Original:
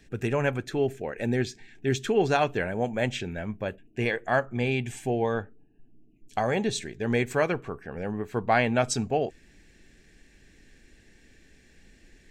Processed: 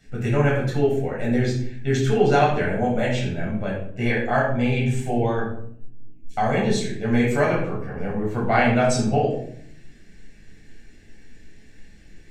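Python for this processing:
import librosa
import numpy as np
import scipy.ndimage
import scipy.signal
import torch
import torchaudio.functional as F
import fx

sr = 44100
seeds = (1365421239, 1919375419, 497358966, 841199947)

y = fx.room_shoebox(x, sr, seeds[0], volume_m3=920.0, walls='furnished', distance_m=7.1)
y = y * librosa.db_to_amplitude(-4.5)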